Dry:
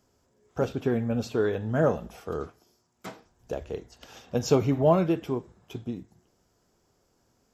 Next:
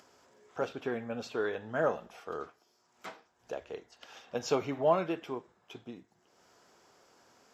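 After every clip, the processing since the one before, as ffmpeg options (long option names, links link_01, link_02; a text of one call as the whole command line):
ffmpeg -i in.wav -af "highpass=frequency=1400:poles=1,aemphasis=mode=reproduction:type=75kf,acompressor=mode=upward:threshold=-54dB:ratio=2.5,volume=3.5dB" out.wav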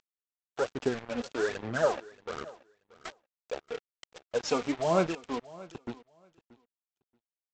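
ffmpeg -i in.wav -af "aphaser=in_gain=1:out_gain=1:delay=4.2:decay=0.63:speed=1.2:type=sinusoidal,aresample=16000,acrusher=bits=5:mix=0:aa=0.5,aresample=44100,aecho=1:1:630|1260:0.0944|0.0151" out.wav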